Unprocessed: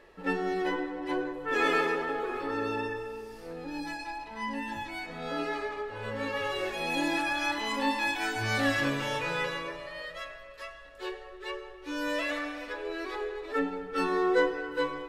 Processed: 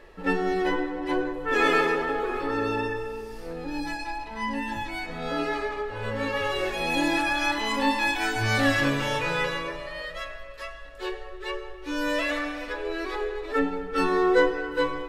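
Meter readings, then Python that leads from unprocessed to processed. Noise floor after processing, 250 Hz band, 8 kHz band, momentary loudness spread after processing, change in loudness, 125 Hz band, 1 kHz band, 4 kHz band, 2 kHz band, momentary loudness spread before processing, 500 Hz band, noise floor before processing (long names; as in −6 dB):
−40 dBFS, +5.0 dB, +4.5 dB, 13 LU, +4.5 dB, +7.0 dB, +4.5 dB, +4.5 dB, +4.5 dB, 13 LU, +4.5 dB, −47 dBFS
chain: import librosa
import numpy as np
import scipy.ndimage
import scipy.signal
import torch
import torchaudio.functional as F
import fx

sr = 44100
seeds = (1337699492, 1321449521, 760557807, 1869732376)

y = fx.low_shelf(x, sr, hz=63.0, db=10.5)
y = F.gain(torch.from_numpy(y), 4.5).numpy()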